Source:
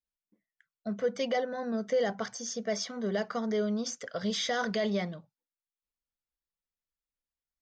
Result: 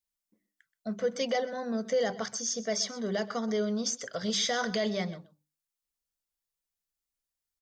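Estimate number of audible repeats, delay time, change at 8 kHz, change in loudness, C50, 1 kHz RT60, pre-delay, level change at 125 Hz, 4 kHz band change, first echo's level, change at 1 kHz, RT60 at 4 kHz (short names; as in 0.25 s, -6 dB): 1, 0.127 s, +6.0 dB, +1.0 dB, none, none, none, -0.5 dB, +3.5 dB, -17.5 dB, 0.0 dB, none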